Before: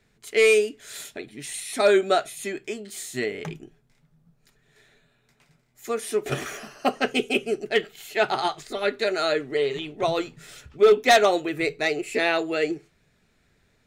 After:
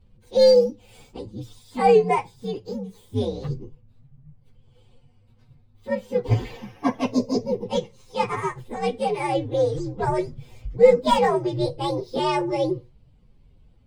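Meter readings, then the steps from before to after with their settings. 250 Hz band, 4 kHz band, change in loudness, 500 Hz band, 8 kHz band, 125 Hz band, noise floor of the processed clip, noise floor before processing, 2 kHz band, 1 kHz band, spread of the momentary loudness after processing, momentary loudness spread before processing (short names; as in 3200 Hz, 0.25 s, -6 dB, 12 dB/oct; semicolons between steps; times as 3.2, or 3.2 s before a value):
+3.5 dB, -4.5 dB, +1.0 dB, +1.5 dB, -9.5 dB, +12.0 dB, -56 dBFS, -66 dBFS, -9.5 dB, +2.0 dB, 18 LU, 18 LU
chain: inharmonic rescaling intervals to 129%; RIAA curve playback; gain +2 dB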